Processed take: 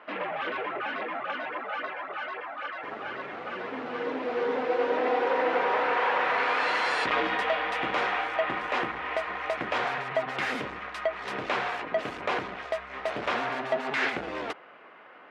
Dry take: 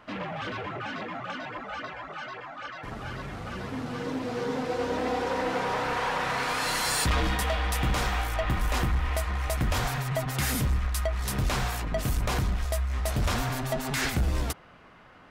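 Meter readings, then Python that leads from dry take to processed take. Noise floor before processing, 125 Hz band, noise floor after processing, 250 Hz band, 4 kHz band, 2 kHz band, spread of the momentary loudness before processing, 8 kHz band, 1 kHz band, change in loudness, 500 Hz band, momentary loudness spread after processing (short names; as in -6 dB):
-52 dBFS, -20.5 dB, -50 dBFS, -4.5 dB, -3.0 dB, +3.5 dB, 10 LU, under -15 dB, +3.0 dB, 0.0 dB, +3.5 dB, 11 LU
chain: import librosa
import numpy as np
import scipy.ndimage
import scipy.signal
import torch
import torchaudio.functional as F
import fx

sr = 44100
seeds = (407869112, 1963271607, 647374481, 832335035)

y = scipy.signal.sosfilt(scipy.signal.cheby1(2, 1.0, [400.0, 2500.0], 'bandpass', fs=sr, output='sos'), x)
y = y * librosa.db_to_amplitude(4.0)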